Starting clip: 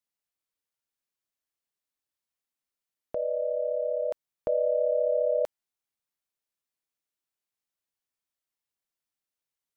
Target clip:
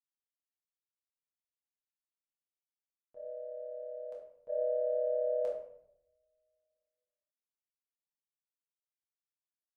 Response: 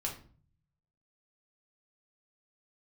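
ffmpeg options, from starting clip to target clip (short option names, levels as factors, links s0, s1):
-filter_complex "[0:a]agate=range=0.0224:threshold=0.178:ratio=3:detection=peak[s0];[1:a]atrim=start_sample=2205,asetrate=22932,aresample=44100[s1];[s0][s1]afir=irnorm=-1:irlink=0"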